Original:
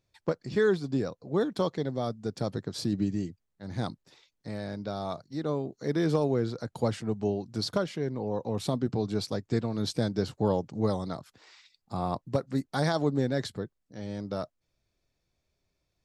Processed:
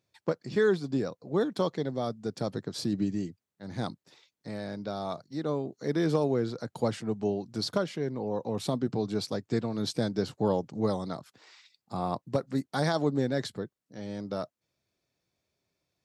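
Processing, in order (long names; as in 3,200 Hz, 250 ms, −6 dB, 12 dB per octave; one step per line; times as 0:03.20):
high-pass filter 120 Hz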